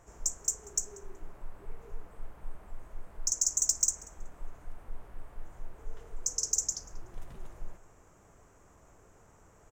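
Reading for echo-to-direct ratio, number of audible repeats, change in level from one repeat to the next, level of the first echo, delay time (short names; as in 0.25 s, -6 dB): -23.0 dB, 1, no steady repeat, -23.0 dB, 0.187 s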